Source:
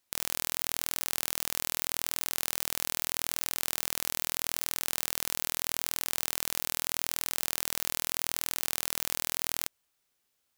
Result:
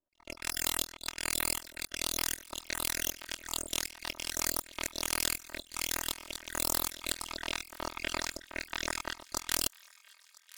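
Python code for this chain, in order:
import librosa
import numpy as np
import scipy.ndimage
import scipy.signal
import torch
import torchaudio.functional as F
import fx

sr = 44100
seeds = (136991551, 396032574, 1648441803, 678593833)

y = fx.spec_dropout(x, sr, seeds[0], share_pct=64)
y = fx.lowpass(y, sr, hz=3100.0, slope=6, at=(7.23, 9.25))
y = fx.rider(y, sr, range_db=4, speed_s=2.0)
y = fx.step_gate(y, sr, bpm=179, pattern='x..x.xxxx', floor_db=-12.0, edge_ms=4.5)
y = fx.env_lowpass(y, sr, base_hz=460.0, full_db=-35.5)
y = y + 0.94 * np.pad(y, (int(3.2 * sr / 1000.0), 0))[:len(y)]
y = np.maximum(y, 0.0)
y = fx.low_shelf(y, sr, hz=380.0, db=-9.0)
y = fx.echo_wet_highpass(y, sr, ms=1000, feedback_pct=65, hz=1500.0, wet_db=-22.0)
y = y * 10.0 ** (7.5 / 20.0)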